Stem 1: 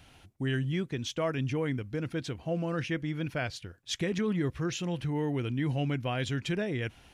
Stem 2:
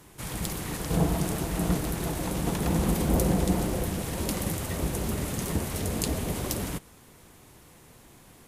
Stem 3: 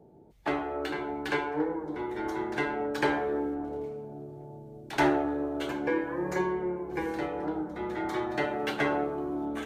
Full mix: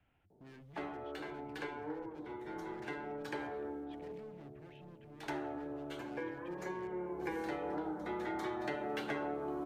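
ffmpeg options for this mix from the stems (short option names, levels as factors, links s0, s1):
-filter_complex "[0:a]lowpass=f=2500:w=0.5412,lowpass=f=2500:w=1.3066,bandreject=f=65.49:t=h:w=4,bandreject=f=130.98:t=h:w=4,bandreject=f=196.47:t=h:w=4,asoftclip=type=hard:threshold=0.0158,volume=0.133[s0];[2:a]adelay=300,volume=0.891,afade=t=in:st=6.81:d=0.48:silence=0.316228[s1];[s0][s1]amix=inputs=2:normalize=0,acrossover=split=160|530[s2][s3][s4];[s2]acompressor=threshold=0.00126:ratio=4[s5];[s3]acompressor=threshold=0.00891:ratio=4[s6];[s4]acompressor=threshold=0.00891:ratio=4[s7];[s5][s6][s7]amix=inputs=3:normalize=0"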